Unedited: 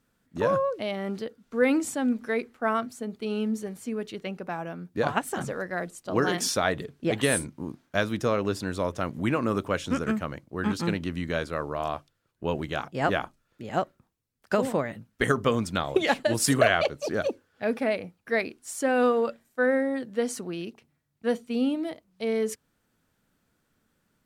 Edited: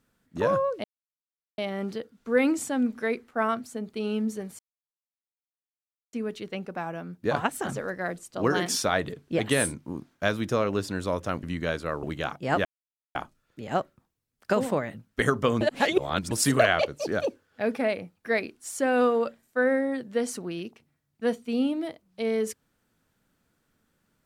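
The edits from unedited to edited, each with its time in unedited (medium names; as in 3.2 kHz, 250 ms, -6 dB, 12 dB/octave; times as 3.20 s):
0.84 s: insert silence 0.74 s
3.85 s: insert silence 1.54 s
9.15–11.10 s: delete
11.70–12.55 s: delete
13.17 s: insert silence 0.50 s
15.63–16.33 s: reverse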